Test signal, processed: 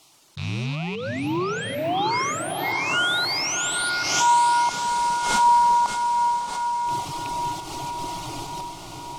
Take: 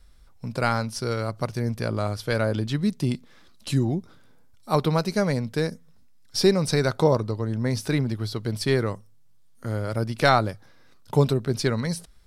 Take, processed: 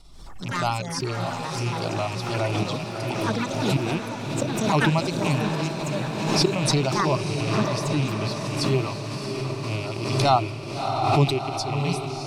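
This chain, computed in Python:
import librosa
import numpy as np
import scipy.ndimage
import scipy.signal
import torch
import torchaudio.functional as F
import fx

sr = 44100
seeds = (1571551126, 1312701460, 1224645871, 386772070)

y = fx.rattle_buzz(x, sr, strikes_db=-29.0, level_db=-19.0)
y = fx.dereverb_blind(y, sr, rt60_s=1.6)
y = fx.low_shelf(y, sr, hz=61.0, db=-8.0)
y = fx.auto_swell(y, sr, attack_ms=107.0)
y = fx.fixed_phaser(y, sr, hz=330.0, stages=8)
y = fx.echo_pitch(y, sr, ms=118, semitones=7, count=3, db_per_echo=-6.0)
y = fx.air_absorb(y, sr, metres=56.0)
y = fx.echo_diffused(y, sr, ms=651, feedback_pct=66, wet_db=-5.0)
y = fx.pre_swell(y, sr, db_per_s=41.0)
y = y * 10.0 ** (4.5 / 20.0)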